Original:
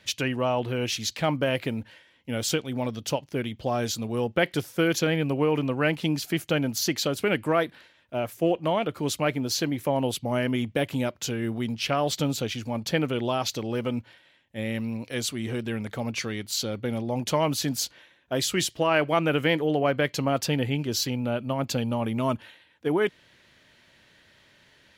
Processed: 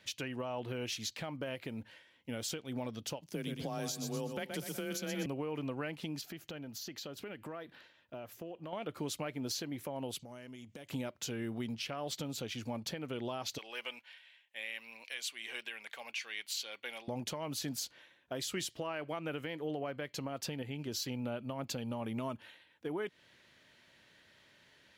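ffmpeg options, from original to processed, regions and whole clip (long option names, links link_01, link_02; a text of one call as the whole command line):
ffmpeg -i in.wav -filter_complex "[0:a]asettb=1/sr,asplit=3[link_01][link_02][link_03];[link_01]atrim=end=3.214[link_04];[link_02]atrim=start=3.21:end=5.26,asetpts=PTS-STARTPTS,afade=type=in:duration=0.004:curve=qsin,afade=type=out:start_time=2.046:duration=0.004:curve=qsin,bass=frequency=250:gain=5,treble=frequency=4000:gain=10,aecho=1:1:122|244|366|488|610:0.355|0.145|0.0596|0.0245|0.01,atrim=end_sample=90405,afreqshift=25[link_05];[link_03]atrim=start=5.256[link_06];[link_04][link_05]acrossfade=duration=0.004:curve1=hsin:curve2=qsin[link_07];[link_07][link_06]acrossfade=duration=0.004:curve1=qsin:curve2=hsin,asettb=1/sr,asplit=3[link_08][link_09][link_10];[link_08]atrim=end=6.214[link_11];[link_09]atrim=start=6.21:end=8.73,asetpts=PTS-STARTPTS,afade=type=in:duration=0.004:curve=qsin,afade=type=out:start_time=2.516:duration=0.004:curve=qsin,equalizer=frequency=9300:width_type=o:width=0.58:gain=-9,acompressor=threshold=-36dB:ratio=6:attack=3.2:release=140:knee=1:detection=peak,bandreject=frequency=2200:width=19[link_12];[link_10]atrim=start=8.726[link_13];[link_11][link_12]acrossfade=duration=0.004:curve1=hsin:curve2=qsin[link_14];[link_14][link_13]acrossfade=duration=0.004:curve1=qsin:curve2=hsin,asettb=1/sr,asplit=3[link_15][link_16][link_17];[link_15]atrim=end=10.194[link_18];[link_16]atrim=start=10.19:end=10.9,asetpts=PTS-STARTPTS,afade=type=in:duration=0.004:curve=qsin,afade=type=out:start_time=0.706:duration=0.004:curve=qsin,equalizer=frequency=6800:width_type=o:width=0.89:gain=15,acompressor=threshold=-40dB:ratio=8:attack=3.2:release=140:knee=1:detection=peak[link_19];[link_17]atrim=start=10.896[link_20];[link_18][link_19]acrossfade=duration=0.004:curve1=hsin:curve2=qsin[link_21];[link_21][link_20]acrossfade=duration=0.004:curve1=qsin:curve2=hsin,asettb=1/sr,asplit=3[link_22][link_23][link_24];[link_22]atrim=end=13.584[link_25];[link_23]atrim=start=13.58:end=17.08,asetpts=PTS-STARTPTS,afade=type=in:duration=0.004:curve=qsin,afade=type=out:start_time=3.496:duration=0.004:curve=qsin,highpass=970,equalizer=frequency=2600:width_type=o:width=0.98:gain=7.5,bandreject=frequency=1300:width=9.7[link_26];[link_24]atrim=start=17.076[link_27];[link_25][link_26]acrossfade=duration=0.004:curve1=hsin:curve2=qsin[link_28];[link_28][link_27]acrossfade=duration=0.004:curve1=qsin:curve2=hsin,lowshelf=frequency=79:gain=-8,acompressor=threshold=-26dB:ratio=6,alimiter=limit=-22dB:level=0:latency=1:release=269,volume=-5.5dB" out.wav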